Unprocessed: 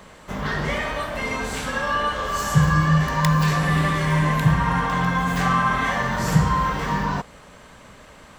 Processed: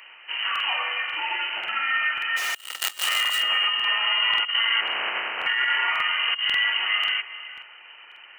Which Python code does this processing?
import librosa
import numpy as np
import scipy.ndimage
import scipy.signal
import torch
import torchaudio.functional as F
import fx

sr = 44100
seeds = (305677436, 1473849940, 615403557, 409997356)

p1 = fx.spec_flatten(x, sr, power=0.17, at=(4.8, 5.45), fade=0.02)
p2 = fx.freq_invert(p1, sr, carrier_hz=3000)
p3 = fx.quant_companded(p2, sr, bits=2, at=(2.36, 3.08), fade=0.02)
p4 = p3 + fx.echo_single(p3, sr, ms=400, db=-16.0, dry=0)
p5 = fx.rev_plate(p4, sr, seeds[0], rt60_s=3.2, hf_ratio=0.4, predelay_ms=0, drr_db=18.0)
p6 = fx.over_compress(p5, sr, threshold_db=-20.0, ratio=-0.5)
p7 = scipy.signal.sosfilt(scipy.signal.butter(2, 580.0, 'highpass', fs=sr, output='sos'), p6)
p8 = fx.buffer_crackle(p7, sr, first_s=0.51, period_s=0.54, block=2048, kind='repeat')
y = F.gain(torch.from_numpy(p8), -3.5).numpy()